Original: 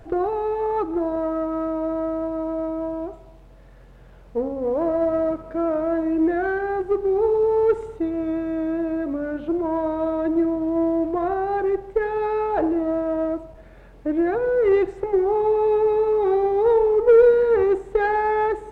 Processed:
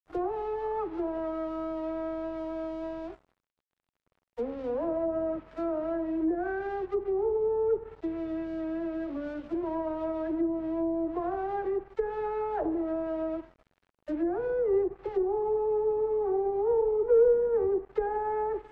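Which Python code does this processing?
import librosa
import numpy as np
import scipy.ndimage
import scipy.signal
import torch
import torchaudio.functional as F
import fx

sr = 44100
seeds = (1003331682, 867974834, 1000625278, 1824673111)

y = fx.dispersion(x, sr, late='lows', ms=51.0, hz=480.0)
y = np.sign(y) * np.maximum(np.abs(y) - 10.0 ** (-40.5 / 20.0), 0.0)
y = fx.env_lowpass_down(y, sr, base_hz=860.0, full_db=-17.0)
y = F.gain(torch.from_numpy(y), -7.5).numpy()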